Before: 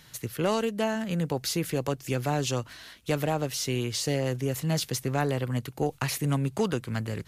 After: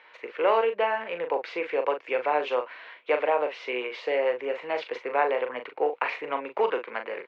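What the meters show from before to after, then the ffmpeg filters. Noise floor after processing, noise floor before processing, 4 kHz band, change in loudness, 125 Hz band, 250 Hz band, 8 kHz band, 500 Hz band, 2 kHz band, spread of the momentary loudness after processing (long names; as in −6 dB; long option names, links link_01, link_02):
−54 dBFS, −54 dBFS, −6.0 dB, +1.5 dB, below −30 dB, −11.5 dB, below −30 dB, +5.0 dB, +5.5 dB, 8 LU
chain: -filter_complex "[0:a]highpass=frequency=430:width=0.5412,highpass=frequency=430:width=1.3066,equalizer=frequency=500:width_type=q:width=4:gain=6,equalizer=frequency=970:width_type=q:width=4:gain=7,equalizer=frequency=2300:width_type=q:width=4:gain=7,lowpass=frequency=2600:width=0.5412,lowpass=frequency=2600:width=1.3066,asplit=2[link_01][link_02];[link_02]adelay=40,volume=-7.5dB[link_03];[link_01][link_03]amix=inputs=2:normalize=0,volume=2.5dB"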